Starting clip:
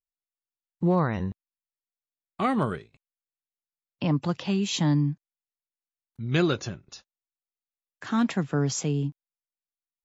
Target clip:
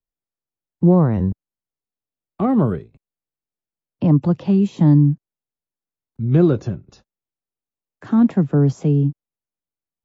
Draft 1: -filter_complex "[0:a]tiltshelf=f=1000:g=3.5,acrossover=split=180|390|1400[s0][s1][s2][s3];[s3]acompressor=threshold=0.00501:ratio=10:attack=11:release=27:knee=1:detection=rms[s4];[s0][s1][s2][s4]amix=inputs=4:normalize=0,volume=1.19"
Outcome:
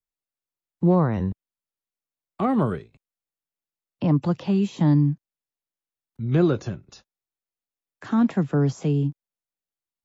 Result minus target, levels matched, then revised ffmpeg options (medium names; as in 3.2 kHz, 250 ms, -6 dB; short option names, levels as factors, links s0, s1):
1 kHz band +5.0 dB
-filter_complex "[0:a]tiltshelf=f=1000:g=10,acrossover=split=180|390|1400[s0][s1][s2][s3];[s3]acompressor=threshold=0.00501:ratio=10:attack=11:release=27:knee=1:detection=rms[s4];[s0][s1][s2][s4]amix=inputs=4:normalize=0,volume=1.19"